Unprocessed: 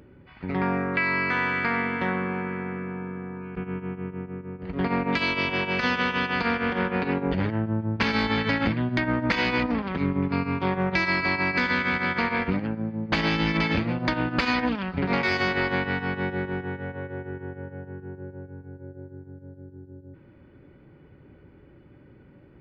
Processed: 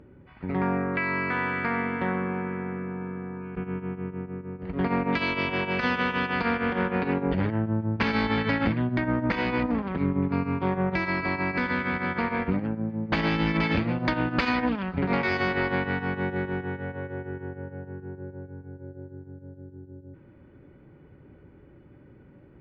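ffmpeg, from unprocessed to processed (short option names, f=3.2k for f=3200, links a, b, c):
-af "asetnsamples=n=441:p=0,asendcmd='3.01 lowpass f 2500;8.87 lowpass f 1300;12.9 lowpass f 2300;13.63 lowpass f 3900;14.49 lowpass f 2200;16.36 lowpass f 4100;17.48 lowpass f 2300',lowpass=f=1.6k:p=1"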